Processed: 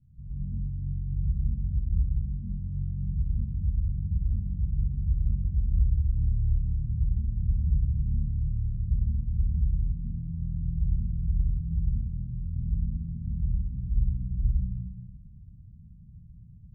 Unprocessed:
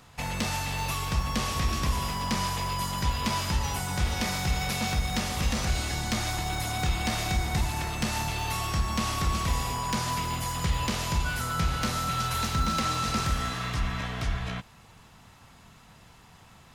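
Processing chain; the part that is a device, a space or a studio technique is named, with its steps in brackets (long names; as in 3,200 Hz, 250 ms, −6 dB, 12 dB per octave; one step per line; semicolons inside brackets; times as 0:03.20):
club heard from the street (brickwall limiter −27 dBFS, peak gain reduction 10 dB; low-pass filter 150 Hz 24 dB per octave; convolution reverb RT60 1.0 s, pre-delay 103 ms, DRR −8 dB)
0:04.79–0:06.58: comb filter 2.1 ms, depth 38%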